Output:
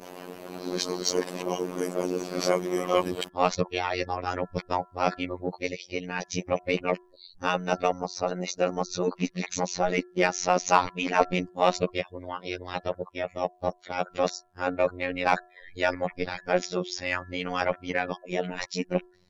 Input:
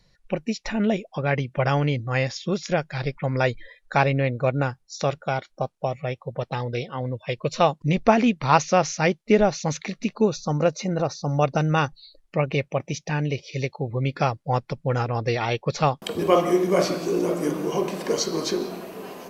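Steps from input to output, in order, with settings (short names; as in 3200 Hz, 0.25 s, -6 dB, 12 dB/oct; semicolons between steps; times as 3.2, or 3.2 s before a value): whole clip reversed; harmonic-percussive split harmonic -12 dB; de-hum 342.1 Hz, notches 5; in parallel at -4 dB: soft clip -19 dBFS, distortion -10 dB; on the sum: robotiser 90.2 Hz; gain -1.5 dB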